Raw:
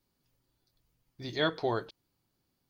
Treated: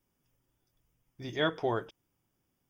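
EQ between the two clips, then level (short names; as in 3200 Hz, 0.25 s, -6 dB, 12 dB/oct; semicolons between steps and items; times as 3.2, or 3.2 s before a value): Butterworth band-stop 4200 Hz, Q 2.8; 0.0 dB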